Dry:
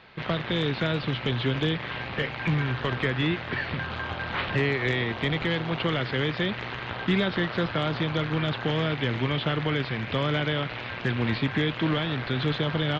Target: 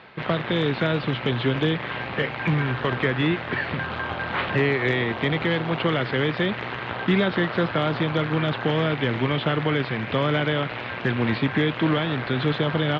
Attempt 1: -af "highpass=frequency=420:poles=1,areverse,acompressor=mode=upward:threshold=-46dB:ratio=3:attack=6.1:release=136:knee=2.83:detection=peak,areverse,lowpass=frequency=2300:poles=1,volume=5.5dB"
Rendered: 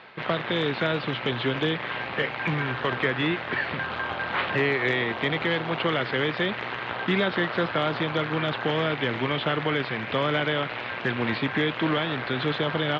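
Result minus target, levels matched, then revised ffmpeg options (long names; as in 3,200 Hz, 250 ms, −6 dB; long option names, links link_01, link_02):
125 Hz band −4.5 dB
-af "highpass=frequency=150:poles=1,areverse,acompressor=mode=upward:threshold=-46dB:ratio=3:attack=6.1:release=136:knee=2.83:detection=peak,areverse,lowpass=frequency=2300:poles=1,volume=5.5dB"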